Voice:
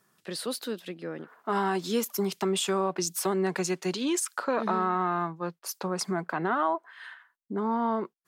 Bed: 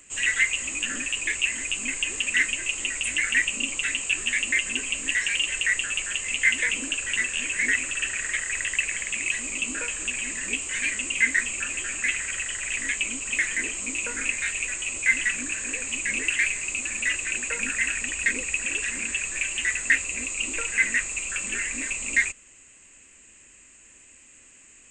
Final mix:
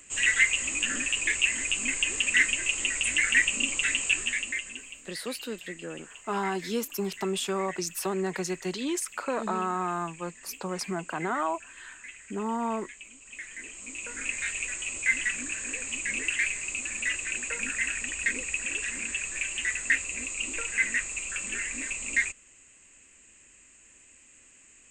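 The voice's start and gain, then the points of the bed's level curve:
4.80 s, -2.5 dB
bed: 4.11 s 0 dB
5.09 s -19.5 dB
13.18 s -19.5 dB
14.4 s -4 dB

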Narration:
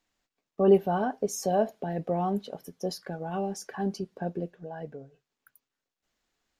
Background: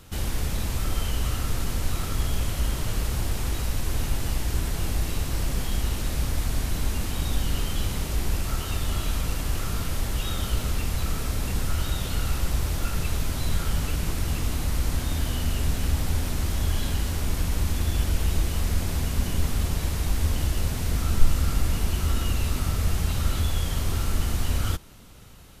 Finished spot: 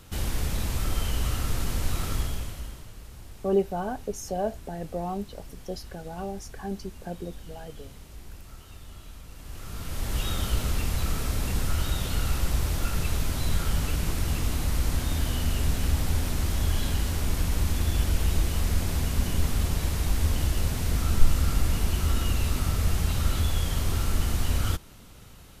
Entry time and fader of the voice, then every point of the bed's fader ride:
2.85 s, -3.5 dB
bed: 2.14 s -1 dB
2.92 s -18 dB
9.29 s -18 dB
10.17 s -0.5 dB

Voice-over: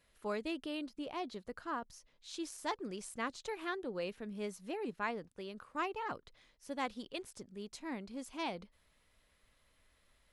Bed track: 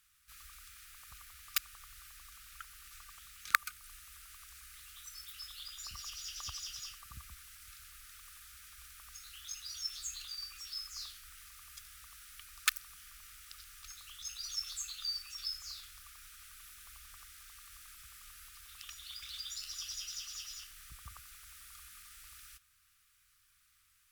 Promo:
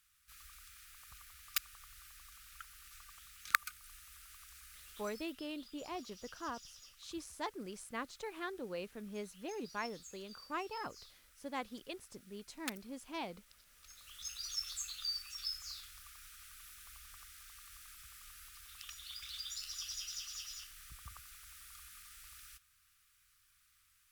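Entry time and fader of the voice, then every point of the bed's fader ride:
4.75 s, -3.0 dB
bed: 5 s -2.5 dB
5.42 s -12.5 dB
13.65 s -12.5 dB
14.23 s -1 dB

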